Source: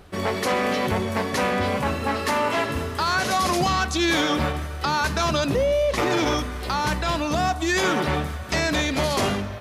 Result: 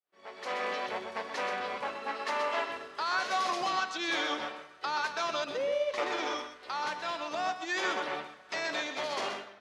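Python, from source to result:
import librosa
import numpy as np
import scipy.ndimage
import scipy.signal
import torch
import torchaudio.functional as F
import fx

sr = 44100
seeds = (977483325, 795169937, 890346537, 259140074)

y = fx.fade_in_head(x, sr, length_s=0.6)
y = fx.bandpass_edges(y, sr, low_hz=500.0, high_hz=5200.0)
y = y + 10.0 ** (-6.5 / 20.0) * np.pad(y, (int(127 * sr / 1000.0), 0))[:len(y)]
y = fx.upward_expand(y, sr, threshold_db=-45.0, expansion=1.5)
y = y * 10.0 ** (-7.0 / 20.0)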